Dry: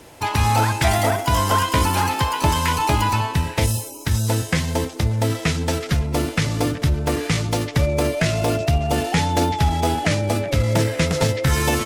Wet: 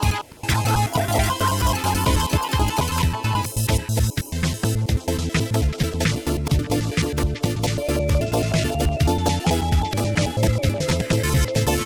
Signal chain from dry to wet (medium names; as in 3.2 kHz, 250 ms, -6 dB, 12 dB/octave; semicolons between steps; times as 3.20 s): slices played last to first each 108 ms, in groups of 4; LFO notch saw down 5.4 Hz 540–2300 Hz